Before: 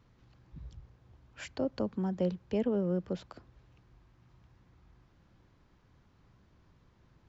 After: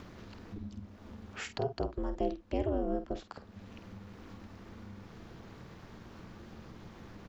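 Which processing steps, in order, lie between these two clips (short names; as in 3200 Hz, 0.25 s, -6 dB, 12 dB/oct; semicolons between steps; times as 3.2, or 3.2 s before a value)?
bell 110 Hz -15 dB 0.35 oct; upward compressor, threshold -33 dBFS; ring modulator 150 Hz; doubler 49 ms -10.5 dB; gain +1.5 dB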